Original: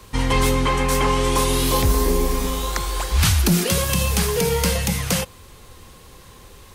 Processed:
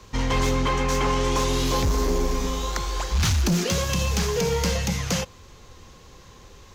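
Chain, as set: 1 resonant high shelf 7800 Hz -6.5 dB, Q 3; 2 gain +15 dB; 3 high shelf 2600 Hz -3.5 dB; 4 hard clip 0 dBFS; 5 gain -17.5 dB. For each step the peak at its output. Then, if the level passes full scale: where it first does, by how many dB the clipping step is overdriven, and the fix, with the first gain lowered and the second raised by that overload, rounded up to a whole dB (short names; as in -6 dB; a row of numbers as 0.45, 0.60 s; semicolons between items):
-5.5, +9.5, +7.5, 0.0, -17.5 dBFS; step 2, 7.5 dB; step 2 +7 dB, step 5 -9.5 dB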